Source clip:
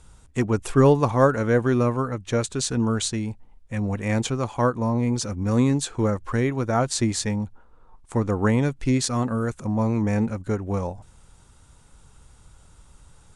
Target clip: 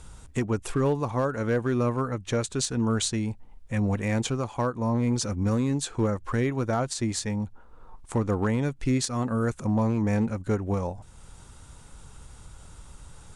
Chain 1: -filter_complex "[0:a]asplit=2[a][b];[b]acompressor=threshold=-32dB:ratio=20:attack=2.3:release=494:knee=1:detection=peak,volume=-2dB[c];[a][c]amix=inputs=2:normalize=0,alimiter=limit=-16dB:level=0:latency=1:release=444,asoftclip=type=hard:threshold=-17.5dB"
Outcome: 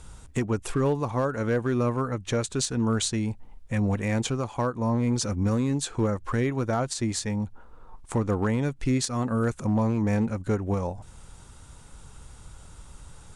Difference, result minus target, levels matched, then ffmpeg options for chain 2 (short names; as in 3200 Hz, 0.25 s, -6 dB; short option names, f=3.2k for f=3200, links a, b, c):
compressor: peak gain reduction -11 dB
-filter_complex "[0:a]asplit=2[a][b];[b]acompressor=threshold=-43.5dB:ratio=20:attack=2.3:release=494:knee=1:detection=peak,volume=-2dB[c];[a][c]amix=inputs=2:normalize=0,alimiter=limit=-16dB:level=0:latency=1:release=444,asoftclip=type=hard:threshold=-17.5dB"